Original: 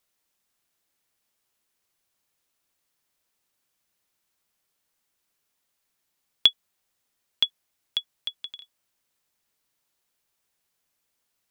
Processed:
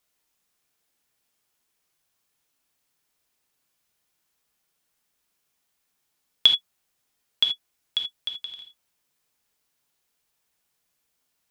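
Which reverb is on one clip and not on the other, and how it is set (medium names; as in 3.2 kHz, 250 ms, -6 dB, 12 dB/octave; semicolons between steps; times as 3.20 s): gated-style reverb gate 100 ms flat, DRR 3 dB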